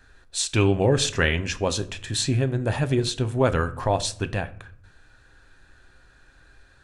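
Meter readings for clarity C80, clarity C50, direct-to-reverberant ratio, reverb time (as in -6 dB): 21.5 dB, 17.5 dB, 10.5 dB, 0.55 s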